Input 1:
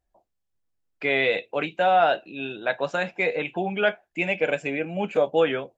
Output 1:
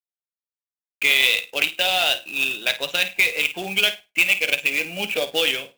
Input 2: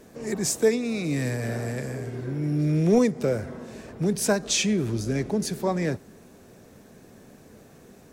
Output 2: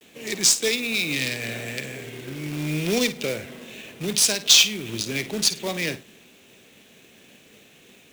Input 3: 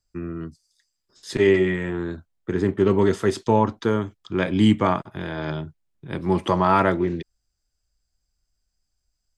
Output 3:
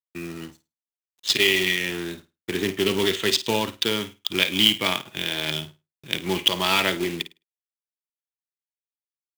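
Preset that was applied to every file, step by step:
adaptive Wiener filter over 9 samples
meter weighting curve D
downward expander −49 dBFS
high shelf with overshoot 2,100 Hz +11 dB, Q 1.5
downward compressor 2 to 1, threshold −17 dBFS
log-companded quantiser 4 bits
on a send: flutter between parallel walls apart 9 metres, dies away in 0.24 s
on the sum: level −2.5 dB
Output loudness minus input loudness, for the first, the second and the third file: +5.0, +4.0, −0.5 LU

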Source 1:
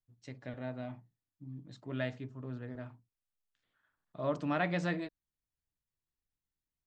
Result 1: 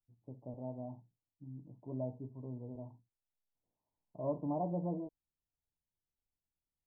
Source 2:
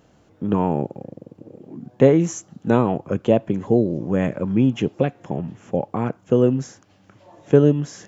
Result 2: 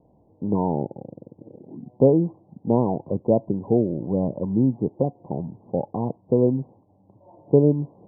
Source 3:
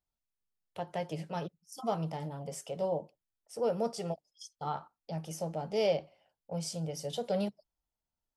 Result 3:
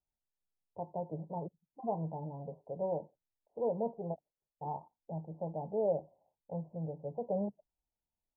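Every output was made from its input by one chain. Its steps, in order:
Butterworth low-pass 1,000 Hz 96 dB per octave
level −2.5 dB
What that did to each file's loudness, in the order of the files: −3.5, −2.5, −3.0 LU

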